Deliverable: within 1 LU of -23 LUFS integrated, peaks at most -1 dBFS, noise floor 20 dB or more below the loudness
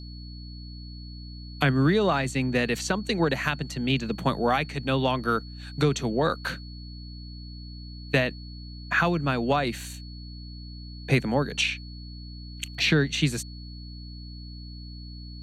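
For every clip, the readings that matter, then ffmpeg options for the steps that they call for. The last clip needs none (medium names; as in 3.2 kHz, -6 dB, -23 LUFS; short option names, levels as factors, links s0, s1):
hum 60 Hz; highest harmonic 300 Hz; hum level -38 dBFS; steady tone 4.4 kHz; tone level -47 dBFS; loudness -26.0 LUFS; peak level -8.0 dBFS; loudness target -23.0 LUFS
-> -af "bandreject=f=60:t=h:w=4,bandreject=f=120:t=h:w=4,bandreject=f=180:t=h:w=4,bandreject=f=240:t=h:w=4,bandreject=f=300:t=h:w=4"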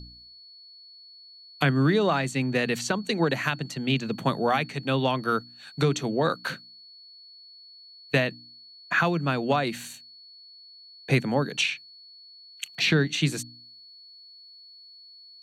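hum not found; steady tone 4.4 kHz; tone level -47 dBFS
-> -af "bandreject=f=4400:w=30"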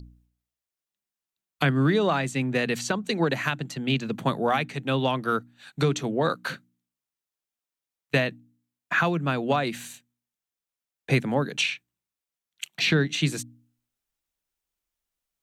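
steady tone not found; loudness -26.0 LUFS; peak level -8.0 dBFS; loudness target -23.0 LUFS
-> -af "volume=1.41"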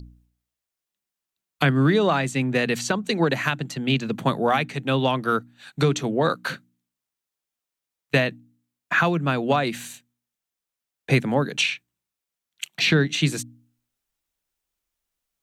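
loudness -23.0 LUFS; peak level -5.0 dBFS; noise floor -87 dBFS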